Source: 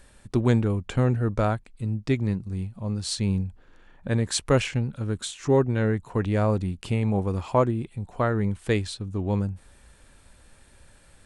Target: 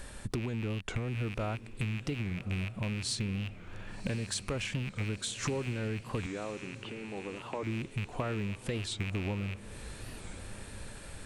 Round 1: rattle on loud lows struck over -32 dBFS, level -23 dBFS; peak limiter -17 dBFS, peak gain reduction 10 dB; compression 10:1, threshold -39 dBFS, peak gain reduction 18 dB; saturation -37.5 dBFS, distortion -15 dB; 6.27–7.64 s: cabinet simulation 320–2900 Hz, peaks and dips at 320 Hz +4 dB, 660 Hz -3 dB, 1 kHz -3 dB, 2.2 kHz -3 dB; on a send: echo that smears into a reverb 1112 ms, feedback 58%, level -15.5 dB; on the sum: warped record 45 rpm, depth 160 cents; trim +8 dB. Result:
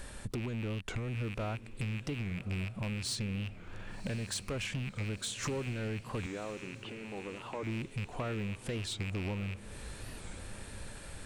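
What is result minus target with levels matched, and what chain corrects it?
saturation: distortion +14 dB
rattle on loud lows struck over -32 dBFS, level -23 dBFS; peak limiter -17 dBFS, peak gain reduction 10 dB; compression 10:1, threshold -39 dBFS, peak gain reduction 18 dB; saturation -27.5 dBFS, distortion -29 dB; 6.27–7.64 s: cabinet simulation 320–2900 Hz, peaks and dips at 320 Hz +4 dB, 660 Hz -3 dB, 1 kHz -3 dB, 2.2 kHz -3 dB; on a send: echo that smears into a reverb 1112 ms, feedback 58%, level -15.5 dB; on the sum: warped record 45 rpm, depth 160 cents; trim +8 dB

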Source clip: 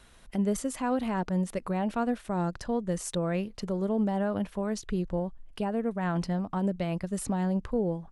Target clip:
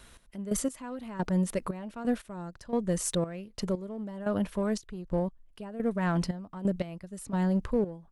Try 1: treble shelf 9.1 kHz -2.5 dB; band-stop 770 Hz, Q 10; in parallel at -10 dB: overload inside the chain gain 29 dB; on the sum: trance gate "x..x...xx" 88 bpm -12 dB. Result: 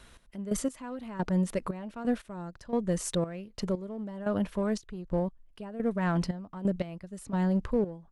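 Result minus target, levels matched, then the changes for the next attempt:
8 kHz band -3.5 dB
change: treble shelf 9.1 kHz +6 dB

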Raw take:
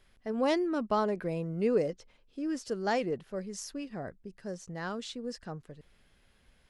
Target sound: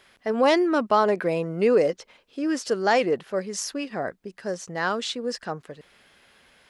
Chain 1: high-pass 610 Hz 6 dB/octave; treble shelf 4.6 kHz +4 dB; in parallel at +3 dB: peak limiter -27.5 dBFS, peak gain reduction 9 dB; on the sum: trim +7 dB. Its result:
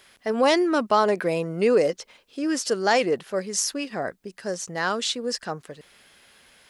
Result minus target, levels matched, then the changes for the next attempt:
8 kHz band +6.0 dB
change: treble shelf 4.6 kHz -5.5 dB

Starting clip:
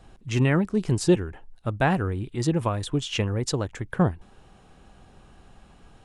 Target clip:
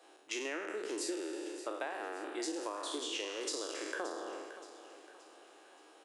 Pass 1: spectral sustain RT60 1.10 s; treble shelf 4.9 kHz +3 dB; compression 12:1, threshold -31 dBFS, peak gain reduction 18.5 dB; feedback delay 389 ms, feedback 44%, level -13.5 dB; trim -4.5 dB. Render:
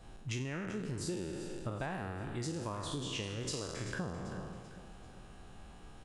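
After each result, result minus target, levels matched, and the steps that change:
echo 185 ms early; 250 Hz band +2.5 dB
change: feedback delay 574 ms, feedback 44%, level -13.5 dB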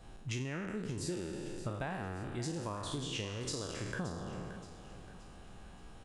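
250 Hz band +2.5 dB
add after spectral sustain: Chebyshev high-pass 310 Hz, order 5

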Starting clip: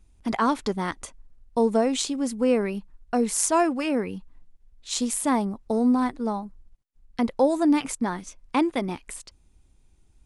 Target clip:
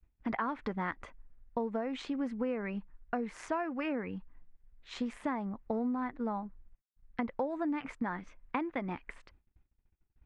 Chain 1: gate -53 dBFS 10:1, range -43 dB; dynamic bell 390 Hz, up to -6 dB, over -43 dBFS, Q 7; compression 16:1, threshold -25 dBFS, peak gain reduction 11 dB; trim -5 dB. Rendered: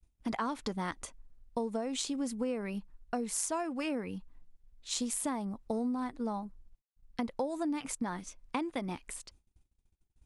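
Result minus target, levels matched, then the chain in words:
2 kHz band -3.5 dB
gate -53 dBFS 10:1, range -43 dB; dynamic bell 390 Hz, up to -6 dB, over -43 dBFS, Q 7; resonant low-pass 1.9 kHz, resonance Q 1.8; compression 16:1, threshold -25 dBFS, peak gain reduction 11.5 dB; trim -5 dB

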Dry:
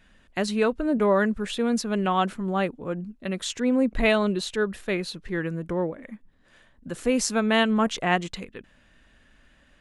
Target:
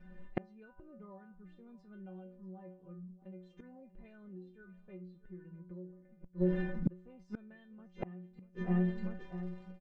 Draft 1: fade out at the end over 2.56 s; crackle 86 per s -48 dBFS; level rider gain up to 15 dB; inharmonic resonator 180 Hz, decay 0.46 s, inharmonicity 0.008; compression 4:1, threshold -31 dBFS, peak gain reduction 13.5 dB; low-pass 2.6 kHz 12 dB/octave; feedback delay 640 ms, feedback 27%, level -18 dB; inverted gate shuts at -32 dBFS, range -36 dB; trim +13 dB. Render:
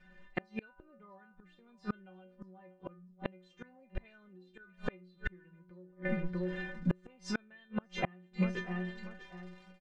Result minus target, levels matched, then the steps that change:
1 kHz band +6.5 dB
add after low-pass: tilt shelf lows +9 dB, about 920 Hz

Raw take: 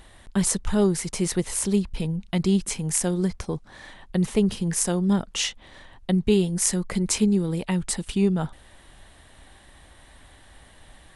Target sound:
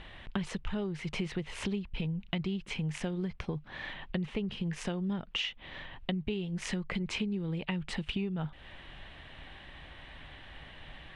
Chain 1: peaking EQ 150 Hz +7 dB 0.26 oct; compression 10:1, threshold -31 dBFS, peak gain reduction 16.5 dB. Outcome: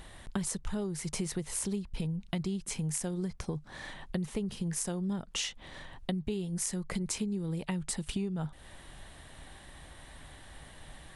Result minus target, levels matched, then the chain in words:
2 kHz band -6.0 dB
resonant low-pass 2.8 kHz, resonance Q 2.4; peaking EQ 150 Hz +7 dB 0.26 oct; compression 10:1, threshold -31 dBFS, peak gain reduction 17 dB

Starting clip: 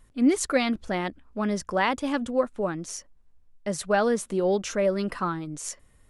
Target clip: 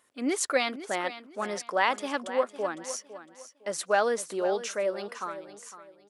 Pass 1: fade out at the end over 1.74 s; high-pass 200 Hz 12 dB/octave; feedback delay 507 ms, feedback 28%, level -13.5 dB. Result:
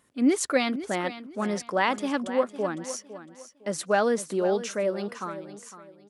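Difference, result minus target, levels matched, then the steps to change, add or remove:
250 Hz band +6.0 dB
change: high-pass 460 Hz 12 dB/octave

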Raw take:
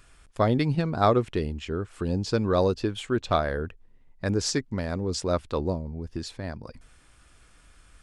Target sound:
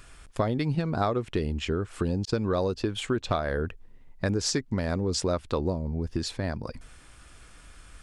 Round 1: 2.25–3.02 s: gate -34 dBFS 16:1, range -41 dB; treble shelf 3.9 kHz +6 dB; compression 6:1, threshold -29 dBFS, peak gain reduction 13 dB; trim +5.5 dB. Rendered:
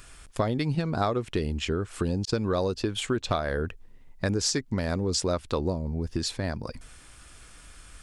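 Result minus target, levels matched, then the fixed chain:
8 kHz band +2.5 dB
2.25–3.02 s: gate -34 dBFS 16:1, range -41 dB; compression 6:1, threshold -29 dBFS, peak gain reduction 13 dB; trim +5.5 dB

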